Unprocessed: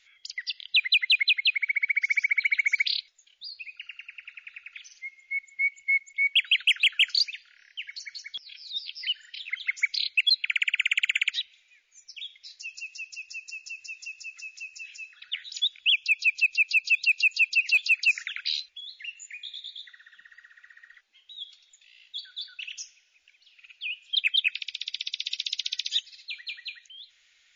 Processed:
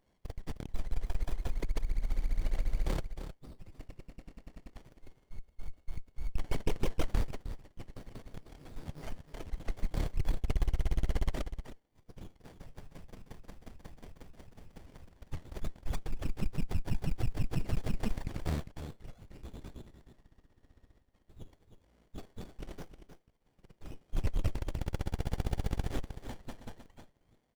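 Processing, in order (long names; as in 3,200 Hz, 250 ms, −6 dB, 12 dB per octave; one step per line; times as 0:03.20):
mu-law and A-law mismatch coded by A
single-tap delay 310 ms −10 dB
windowed peak hold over 33 samples
level −1.5 dB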